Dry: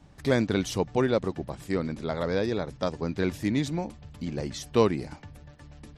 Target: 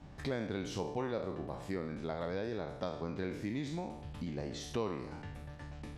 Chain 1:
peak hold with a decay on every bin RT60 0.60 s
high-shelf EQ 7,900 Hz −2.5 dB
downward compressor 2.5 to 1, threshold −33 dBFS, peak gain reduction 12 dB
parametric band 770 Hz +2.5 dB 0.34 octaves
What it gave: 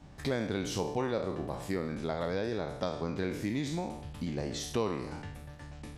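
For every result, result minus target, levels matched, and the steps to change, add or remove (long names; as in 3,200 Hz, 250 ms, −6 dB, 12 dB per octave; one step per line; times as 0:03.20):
downward compressor: peak gain reduction −4.5 dB; 8,000 Hz band +3.5 dB
change: downward compressor 2.5 to 1, threshold −40.5 dBFS, peak gain reduction 16.5 dB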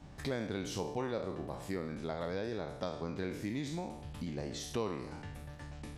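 8,000 Hz band +4.0 dB
change: high-shelf EQ 7,900 Hz −14.5 dB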